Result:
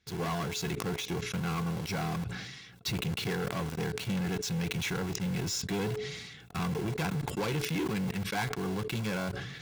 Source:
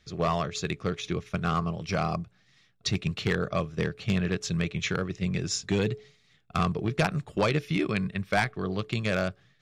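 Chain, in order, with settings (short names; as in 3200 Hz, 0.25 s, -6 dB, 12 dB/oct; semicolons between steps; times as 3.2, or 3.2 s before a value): tube stage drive 25 dB, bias 0.2; in parallel at -3.5 dB: companded quantiser 2-bit; on the sum: notch comb 610 Hz; sustainer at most 40 dB/s; gain -7 dB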